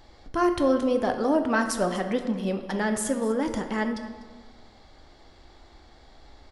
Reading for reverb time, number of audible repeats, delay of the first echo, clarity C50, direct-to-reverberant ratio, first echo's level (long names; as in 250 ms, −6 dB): 1.4 s, 2, 247 ms, 8.0 dB, 5.5 dB, −18.0 dB